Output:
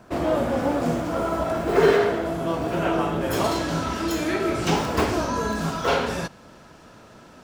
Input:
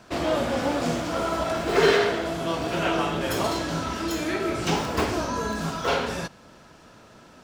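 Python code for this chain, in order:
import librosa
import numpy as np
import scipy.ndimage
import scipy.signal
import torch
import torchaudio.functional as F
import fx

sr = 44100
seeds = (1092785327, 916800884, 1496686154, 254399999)

y = fx.peak_eq(x, sr, hz=4300.0, db=fx.steps((0.0, -10.5), (3.33, -2.5)), octaves=2.5)
y = F.gain(torch.from_numpy(y), 3.0).numpy()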